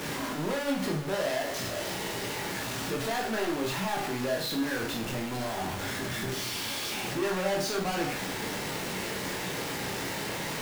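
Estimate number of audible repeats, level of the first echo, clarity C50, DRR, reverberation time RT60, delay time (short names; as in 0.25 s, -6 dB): none, none, 7.0 dB, -0.5 dB, 0.40 s, none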